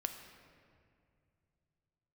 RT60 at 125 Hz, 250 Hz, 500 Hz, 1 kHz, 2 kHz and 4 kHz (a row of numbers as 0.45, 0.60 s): 3.9, 2.8, 2.6, 2.2, 2.0, 1.4 s